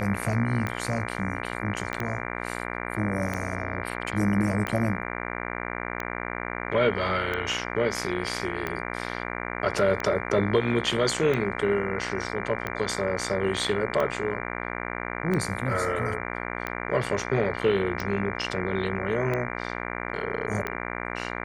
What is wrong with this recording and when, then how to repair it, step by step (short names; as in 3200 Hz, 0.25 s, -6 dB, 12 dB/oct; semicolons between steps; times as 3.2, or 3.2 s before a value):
buzz 60 Hz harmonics 39 -33 dBFS
tick 45 rpm -16 dBFS
1.93 pop -16 dBFS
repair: de-click; de-hum 60 Hz, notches 39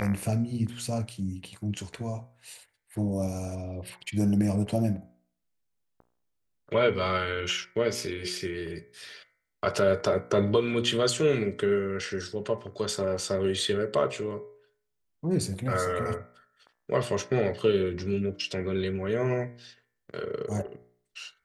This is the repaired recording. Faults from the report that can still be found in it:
1.93 pop